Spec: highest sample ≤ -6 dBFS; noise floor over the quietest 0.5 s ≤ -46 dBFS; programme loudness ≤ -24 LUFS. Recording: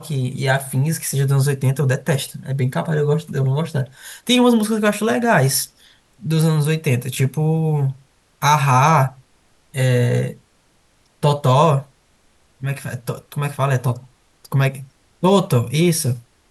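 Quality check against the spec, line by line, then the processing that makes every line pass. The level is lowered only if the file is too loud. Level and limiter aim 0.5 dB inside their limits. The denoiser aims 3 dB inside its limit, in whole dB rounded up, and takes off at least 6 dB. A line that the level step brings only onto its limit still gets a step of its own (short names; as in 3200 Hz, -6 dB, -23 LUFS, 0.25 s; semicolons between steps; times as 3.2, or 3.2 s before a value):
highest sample -3.0 dBFS: fail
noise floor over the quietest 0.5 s -58 dBFS: OK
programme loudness -18.5 LUFS: fail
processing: gain -6 dB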